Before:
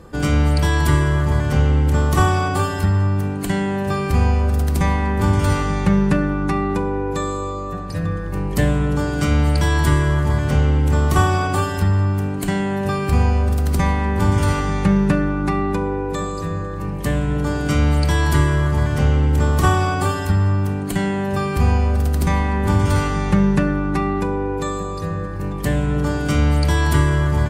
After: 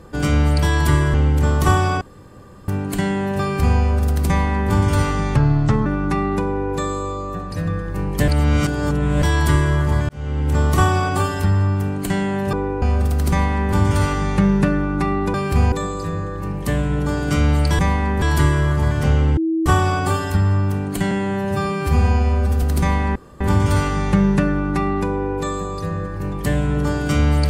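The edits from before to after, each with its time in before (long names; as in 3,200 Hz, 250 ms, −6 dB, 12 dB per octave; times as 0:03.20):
0:01.14–0:01.65: remove
0:02.52–0:03.19: fill with room tone
0:04.79–0:05.22: duplicate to 0:18.17
0:05.87–0:06.24: play speed 74%
0:08.66–0:09.60: reverse
0:10.47–0:10.98: fade in
0:12.91–0:13.29: swap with 0:15.81–0:16.10
0:19.32–0:19.61: beep over 324 Hz −16.5 dBFS
0:21.06–0:22.07: time-stretch 1.5×
0:22.60: splice in room tone 0.25 s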